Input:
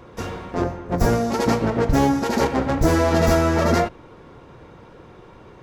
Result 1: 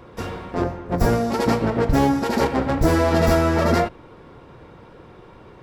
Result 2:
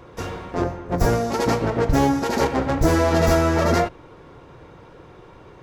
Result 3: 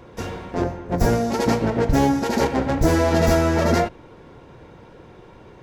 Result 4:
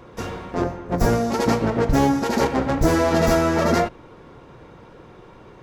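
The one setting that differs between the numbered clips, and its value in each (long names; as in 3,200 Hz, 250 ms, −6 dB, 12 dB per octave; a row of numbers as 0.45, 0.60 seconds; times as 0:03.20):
parametric band, centre frequency: 6,400, 220, 1,200, 81 Hertz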